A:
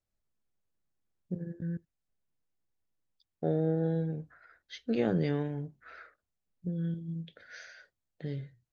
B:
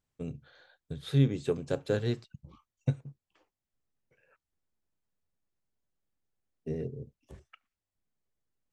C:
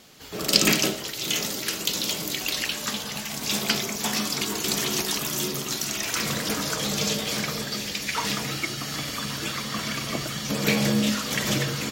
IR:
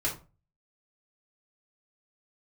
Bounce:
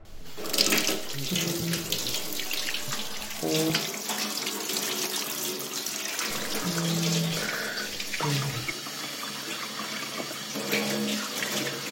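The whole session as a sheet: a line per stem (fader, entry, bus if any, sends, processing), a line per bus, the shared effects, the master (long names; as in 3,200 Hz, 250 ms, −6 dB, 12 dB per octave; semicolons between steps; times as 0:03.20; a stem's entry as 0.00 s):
−2.5 dB, 0.00 s, muted 0:03.70–0:06.30, send −11.5 dB, low-pass filter 1,400 Hz 12 dB per octave; envelope flattener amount 70%
−14.5 dB, 0.00 s, no send, no processing
−3.0 dB, 0.05 s, no send, high-pass filter 260 Hz 12 dB per octave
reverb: on, RT60 0.35 s, pre-delay 3 ms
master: hard clipping −9 dBFS, distortion −29 dB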